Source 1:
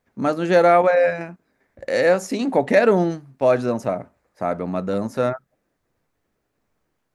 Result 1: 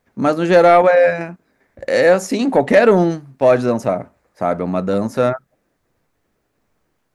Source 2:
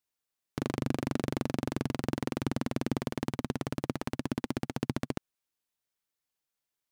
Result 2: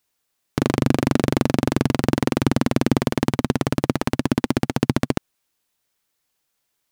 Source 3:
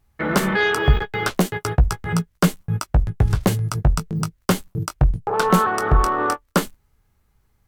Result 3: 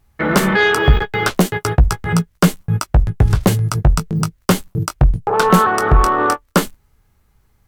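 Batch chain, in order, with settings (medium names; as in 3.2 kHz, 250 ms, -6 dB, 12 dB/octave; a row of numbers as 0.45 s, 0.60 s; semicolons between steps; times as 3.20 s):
saturation -6 dBFS; peak normalisation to -2 dBFS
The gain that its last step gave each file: +5.5 dB, +13.0 dB, +5.5 dB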